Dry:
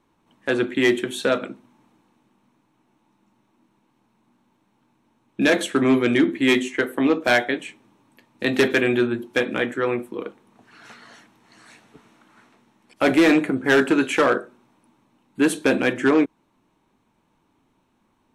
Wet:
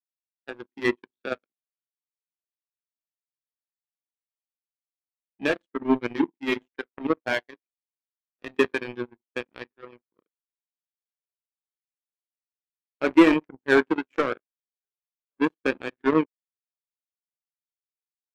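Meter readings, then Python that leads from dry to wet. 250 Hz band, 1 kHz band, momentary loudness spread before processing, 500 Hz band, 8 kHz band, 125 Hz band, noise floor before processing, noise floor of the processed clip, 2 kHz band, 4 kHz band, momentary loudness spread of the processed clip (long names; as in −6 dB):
−5.0 dB, −4.5 dB, 10 LU, −6.0 dB, below −15 dB, −9.0 dB, −67 dBFS, below −85 dBFS, −7.0 dB, −9.5 dB, 17 LU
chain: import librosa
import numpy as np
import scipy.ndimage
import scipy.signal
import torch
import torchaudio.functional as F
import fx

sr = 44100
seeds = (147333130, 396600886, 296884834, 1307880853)

p1 = scipy.ndimage.median_filter(x, 5, mode='constant')
p2 = scipy.signal.sosfilt(scipy.signal.butter(2, 74.0, 'highpass', fs=sr, output='sos'), p1)
p3 = p2 + fx.echo_wet_bandpass(p2, sr, ms=1118, feedback_pct=58, hz=950.0, wet_db=-17.0, dry=0)
p4 = fx.power_curve(p3, sr, exponent=3.0)
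p5 = fx.spectral_expand(p4, sr, expansion=1.5)
y = p5 * librosa.db_to_amplitude(4.5)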